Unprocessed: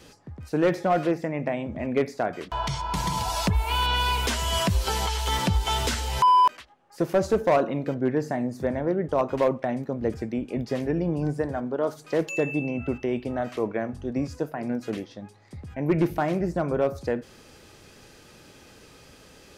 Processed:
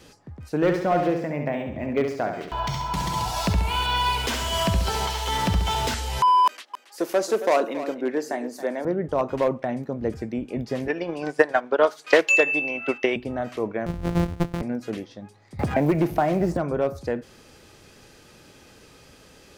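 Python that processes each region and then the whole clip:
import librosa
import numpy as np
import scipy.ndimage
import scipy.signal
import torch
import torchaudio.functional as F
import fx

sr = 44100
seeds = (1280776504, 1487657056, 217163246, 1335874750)

y = fx.chain(x, sr, fx.echo_feedback(ms=68, feedback_pct=47, wet_db=-6),
    fx.resample_linear(factor=2), at=(0.55, 5.94))
y = fx.chain(y, sr, fx.highpass(hz=270.0, slope=24),
    fx.high_shelf(hz=2900.0, db=8.0),
    fx.echo_single(ms=275, db=-13.0), at=(6.46, 8.85))
y = fx.chain(y, sr, fx.highpass(hz=370.0, slope=12),
    fx.peak_eq(hz=2600.0, db=12.0, octaves=2.9),
    fx.transient(attack_db=10, sustain_db=-5), at=(10.88, 13.16))
y = fx.chain(y, sr, fx.sample_sort(block=256),
    fx.tilt_eq(slope=-2.5), at=(13.86, 14.62))
y = fx.chain(y, sr, fx.law_mismatch(coded='mu'),
    fx.peak_eq(hz=700.0, db=6.0, octaves=0.5),
    fx.band_squash(depth_pct=100), at=(15.59, 16.57))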